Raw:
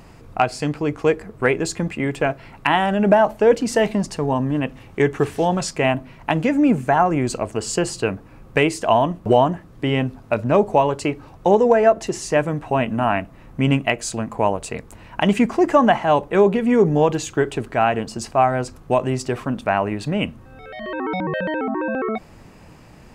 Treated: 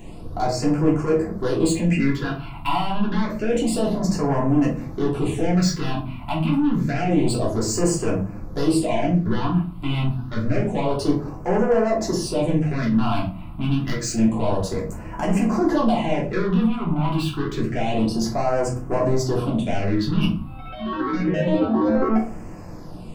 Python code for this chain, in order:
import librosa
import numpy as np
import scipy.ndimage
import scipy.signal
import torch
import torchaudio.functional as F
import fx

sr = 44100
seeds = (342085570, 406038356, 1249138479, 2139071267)

p1 = fx.over_compress(x, sr, threshold_db=-21.0, ratio=-0.5)
p2 = x + (p1 * librosa.db_to_amplitude(-2.0))
p3 = 10.0 ** (-16.5 / 20.0) * np.tanh(p2 / 10.0 ** (-16.5 / 20.0))
p4 = fx.phaser_stages(p3, sr, stages=6, low_hz=460.0, high_hz=3800.0, hz=0.28, feedback_pct=5)
p5 = fx.room_shoebox(p4, sr, seeds[0], volume_m3=250.0, walls='furnished', distance_m=3.1)
y = p5 * librosa.db_to_amplitude(-6.5)